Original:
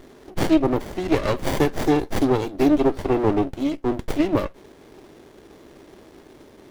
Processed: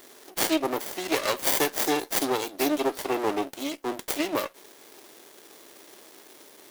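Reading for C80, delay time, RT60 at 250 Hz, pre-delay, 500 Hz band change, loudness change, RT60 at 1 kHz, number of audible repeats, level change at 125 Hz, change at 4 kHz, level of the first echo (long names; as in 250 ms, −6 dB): no reverb audible, no echo audible, no reverb audible, no reverb audible, −6.0 dB, −5.0 dB, no reverb audible, no echo audible, −19.5 dB, +4.5 dB, no echo audible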